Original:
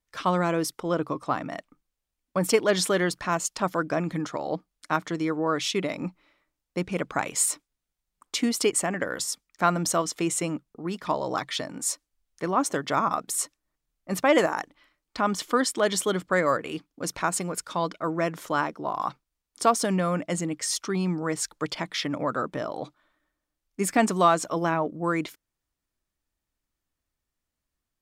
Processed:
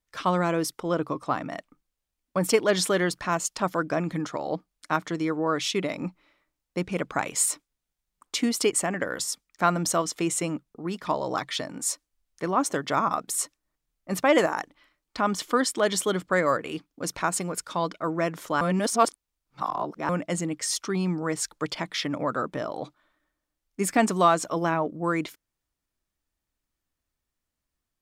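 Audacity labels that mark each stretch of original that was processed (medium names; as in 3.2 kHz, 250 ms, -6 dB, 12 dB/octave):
18.610000	20.090000	reverse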